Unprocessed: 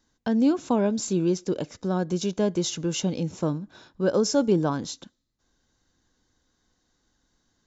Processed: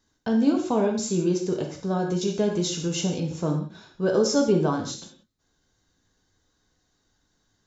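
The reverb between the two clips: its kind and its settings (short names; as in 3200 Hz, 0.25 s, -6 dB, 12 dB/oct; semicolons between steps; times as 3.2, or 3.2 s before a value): non-linear reverb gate 0.21 s falling, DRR 1 dB; gain -1.5 dB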